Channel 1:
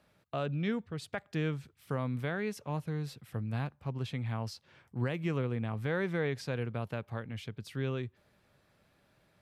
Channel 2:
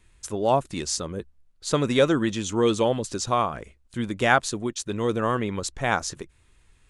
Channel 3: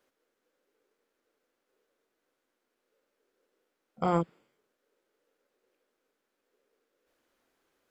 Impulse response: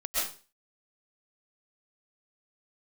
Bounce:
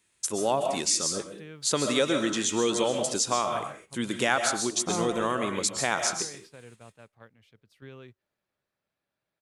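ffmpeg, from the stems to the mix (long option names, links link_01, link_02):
-filter_complex "[0:a]lowshelf=frequency=210:gain=-9,acontrast=20,alimiter=limit=-22.5dB:level=0:latency=1:release=408,adelay=50,volume=-11.5dB[link_01];[1:a]highpass=180,highshelf=frequency=3700:gain=10.5,volume=-2dB,asplit=2[link_02][link_03];[link_03]volume=-11dB[link_04];[2:a]dynaudnorm=framelen=310:gausssize=9:maxgain=10.5dB,adelay=850,volume=-14dB,asplit=2[link_05][link_06];[link_06]volume=-8.5dB[link_07];[3:a]atrim=start_sample=2205[link_08];[link_04][link_07]amix=inputs=2:normalize=0[link_09];[link_09][link_08]afir=irnorm=-1:irlink=0[link_10];[link_01][link_02][link_05][link_10]amix=inputs=4:normalize=0,agate=range=-9dB:threshold=-49dB:ratio=16:detection=peak,acompressor=threshold=-25dB:ratio=2"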